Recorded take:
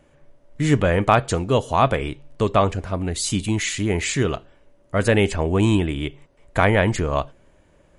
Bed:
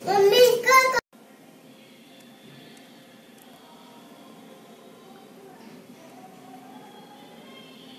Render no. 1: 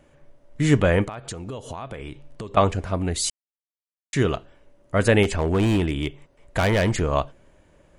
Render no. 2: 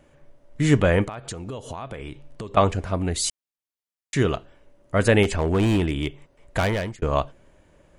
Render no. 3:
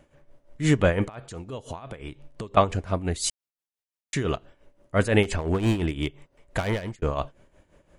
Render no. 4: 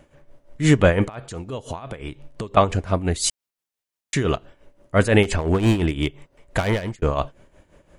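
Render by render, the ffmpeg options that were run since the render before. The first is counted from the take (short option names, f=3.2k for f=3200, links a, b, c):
-filter_complex "[0:a]asettb=1/sr,asplit=3[a][b][c];[a]atrim=end=1.044[d];[b]atrim=start=1.04:end=2.57,asetpts=PTS-STARTPTS,afade=t=in:d=0.004:c=qsin,afade=t=out:st=1.526:d=0.004:c=qsin,acompressor=threshold=-29dB:ratio=20:attack=3.2:release=140:knee=1:detection=peak[e];[c]atrim=start=2.566[f];[d][e]acrossfade=d=0.004:c1=hsin:c2=qsin[g];[g][f]acrossfade=d=0.004:c1=qsin:c2=hsin,asettb=1/sr,asplit=3[h][i][j];[h]atrim=end=5.234[k];[i]atrim=start=5.23:end=7.02,asetpts=PTS-STARTPTS,afade=t=in:d=0.004:c=qsin,afade=t=out:st=1.786:d=0.004:c=qsin,asoftclip=type=hard:threshold=-16dB[l];[j]atrim=start=7.016[m];[k][l]acrossfade=d=0.004:c1=hsin:c2=qsin[n];[n][m]acrossfade=d=0.004:c1=qsin:c2=hsin,asplit=3[o][p][q];[o]atrim=end=3.3,asetpts=PTS-STARTPTS,afade=t=out:st=3.296:d=0.004:c=hsin[r];[p]atrim=start=3.3:end=4.13,asetpts=PTS-STARTPTS,volume=0[s];[q]atrim=start=4.13,asetpts=PTS-STARTPTS,afade=t=in:d=0.004:c=hsin[t];[r][s][t]concat=n=3:v=0:a=1"
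-filter_complex "[0:a]asplit=2[a][b];[a]atrim=end=7.02,asetpts=PTS-STARTPTS,afade=t=out:st=6.57:d=0.45[c];[b]atrim=start=7.02,asetpts=PTS-STARTPTS,afade=t=in:d=0.004:c=hsin[d];[c][d]concat=n=2:v=0:a=1"
-af "tremolo=f=5.8:d=0.7"
-af "volume=5dB,alimiter=limit=-3dB:level=0:latency=1"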